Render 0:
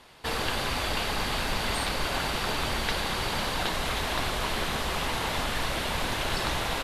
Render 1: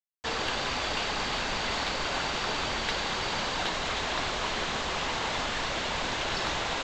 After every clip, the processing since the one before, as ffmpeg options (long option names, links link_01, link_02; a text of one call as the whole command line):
ffmpeg -i in.wav -af "lowshelf=frequency=170:gain=-8,aresample=16000,acrusher=bits=6:mix=0:aa=0.000001,aresample=44100,asoftclip=type=tanh:threshold=-17dB" out.wav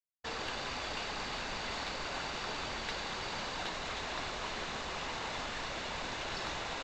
ffmpeg -i in.wav -af "anlmdn=1,bandreject=frequency=3200:width=20,volume=-8dB" out.wav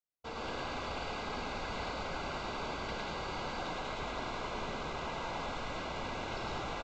ffmpeg -i in.wav -af "asuperstop=centerf=1800:order=20:qfactor=7.4,highshelf=frequency=2100:gain=-11,aecho=1:1:107.9|189.5:0.891|0.631" out.wav